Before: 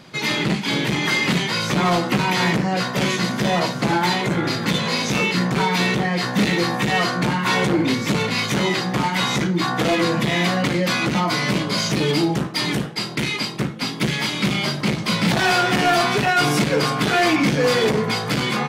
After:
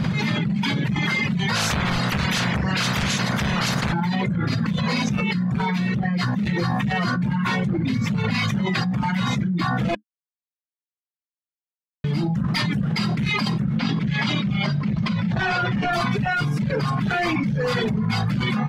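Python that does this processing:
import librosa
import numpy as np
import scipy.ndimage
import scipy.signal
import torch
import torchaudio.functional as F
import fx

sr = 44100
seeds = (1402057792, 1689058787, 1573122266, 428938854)

y = fx.spec_clip(x, sr, under_db=21, at=(1.54, 3.92), fade=0.02)
y = fx.lowpass(y, sr, hz=5600.0, slope=12, at=(13.77, 15.93))
y = fx.edit(y, sr, fx.silence(start_s=9.95, length_s=2.09), tone=tone)
y = fx.dereverb_blind(y, sr, rt60_s=1.6)
y = fx.curve_eq(y, sr, hz=(210.0, 300.0, 1600.0, 9700.0), db=(0, -17, -13, -24))
y = fx.env_flatten(y, sr, amount_pct=100)
y = y * librosa.db_to_amplitude(-5.5)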